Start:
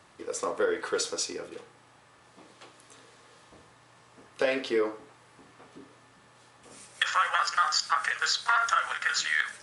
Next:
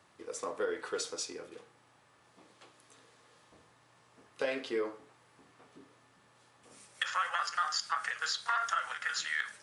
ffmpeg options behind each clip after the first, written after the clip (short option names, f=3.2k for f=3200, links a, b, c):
-af "highpass=61,volume=-7dB"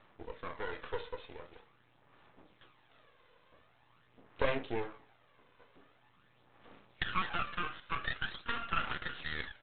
-af "aphaser=in_gain=1:out_gain=1:delay=2:decay=0.54:speed=0.45:type=sinusoidal,aresample=8000,aeval=exprs='max(val(0),0)':c=same,aresample=44100"